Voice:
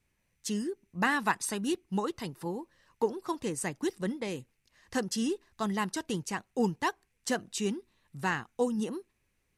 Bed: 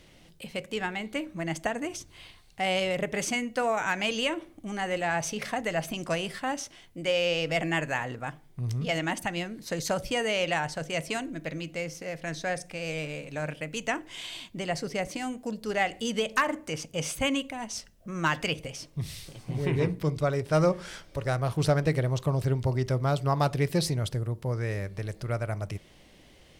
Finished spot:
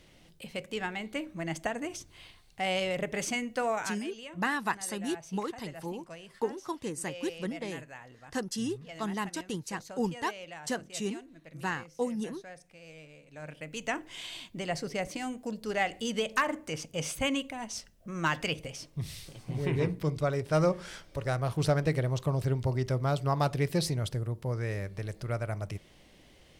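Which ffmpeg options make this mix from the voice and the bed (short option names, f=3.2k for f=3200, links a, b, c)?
-filter_complex "[0:a]adelay=3400,volume=-2.5dB[a];[1:a]volume=11.5dB,afade=t=out:st=3.74:d=0.25:silence=0.199526,afade=t=in:st=13.26:d=0.7:silence=0.188365[b];[a][b]amix=inputs=2:normalize=0"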